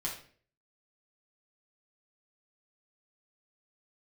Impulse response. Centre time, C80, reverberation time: 27 ms, 10.5 dB, 0.50 s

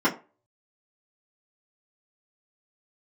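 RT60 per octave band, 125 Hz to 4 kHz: 0.30, 0.25, 0.35, 0.30, 0.25, 0.20 seconds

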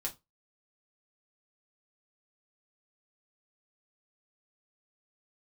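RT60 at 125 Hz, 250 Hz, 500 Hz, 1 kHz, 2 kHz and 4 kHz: 0.25, 0.20, 0.20, 0.20, 0.15, 0.20 seconds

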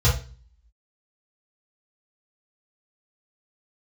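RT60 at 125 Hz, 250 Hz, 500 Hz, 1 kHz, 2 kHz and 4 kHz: 0.55, 0.50, 0.40, 0.35, 0.35, 0.40 seconds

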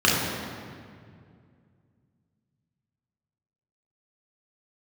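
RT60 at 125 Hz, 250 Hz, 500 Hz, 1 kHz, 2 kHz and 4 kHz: 3.3, 2.9, 2.4, 2.0, 1.8, 1.4 seconds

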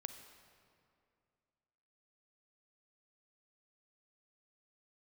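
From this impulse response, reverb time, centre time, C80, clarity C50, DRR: 2.4 s, 27 ms, 9.5 dB, 8.5 dB, 8.0 dB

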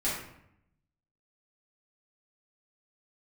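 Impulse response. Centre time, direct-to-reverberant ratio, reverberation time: 53 ms, −10.0 dB, 0.75 s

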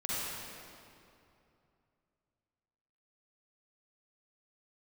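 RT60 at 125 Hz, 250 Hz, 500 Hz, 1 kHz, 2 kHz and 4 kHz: 3.4, 2.9, 2.8, 2.6, 2.2, 1.9 seconds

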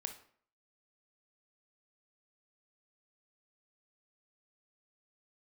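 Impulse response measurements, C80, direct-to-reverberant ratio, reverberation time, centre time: 15.0 dB, 6.0 dB, 0.55 s, 13 ms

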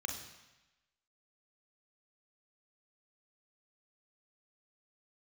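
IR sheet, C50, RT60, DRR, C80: 6.0 dB, 1.0 s, 3.0 dB, 8.5 dB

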